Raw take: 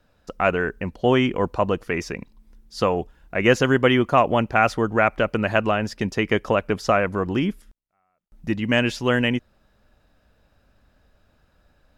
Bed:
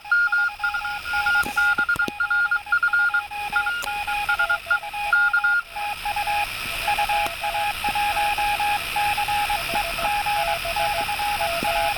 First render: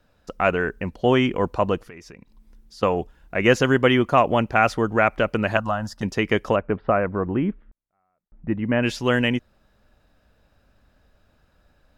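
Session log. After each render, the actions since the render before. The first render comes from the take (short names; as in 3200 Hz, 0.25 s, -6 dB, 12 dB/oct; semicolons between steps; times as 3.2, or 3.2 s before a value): 1.81–2.83 compressor 3:1, threshold -44 dBFS; 5.57–6.03 fixed phaser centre 980 Hz, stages 4; 6.56–8.83 Gaussian blur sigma 4.2 samples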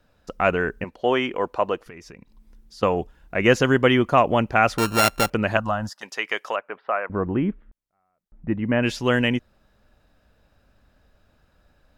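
0.84–1.86 tone controls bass -15 dB, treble -5 dB; 4.78–5.3 sample sorter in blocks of 32 samples; 5.89–7.1 HPF 800 Hz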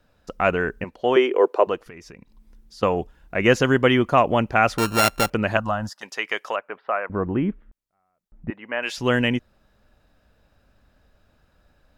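1.16–1.67 resonant high-pass 400 Hz, resonance Q 4.3; 8.5–8.98 HPF 700 Hz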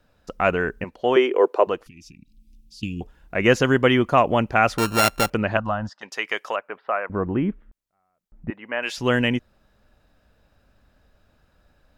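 1.87–3.01 Chebyshev band-stop 300–2500 Hz, order 4; 5.42–6.12 air absorption 140 m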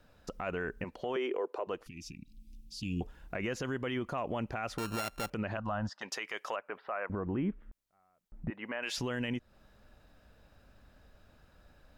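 compressor 3:1, threshold -30 dBFS, peak gain reduction 14 dB; limiter -25.5 dBFS, peak gain reduction 10.5 dB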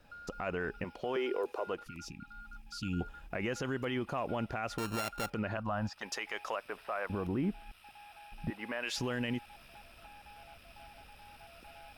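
add bed -31.5 dB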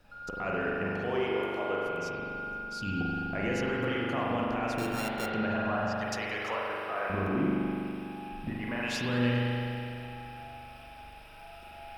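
spring tank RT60 2.9 s, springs 41 ms, chirp 65 ms, DRR -4.5 dB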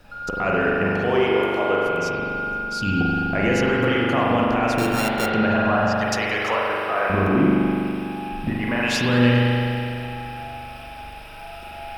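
gain +11 dB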